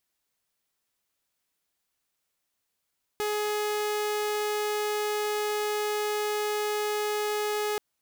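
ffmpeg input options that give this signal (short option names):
-f lavfi -i "aevalsrc='0.0631*(2*mod(420*t,1)-1)':d=4.58:s=44100"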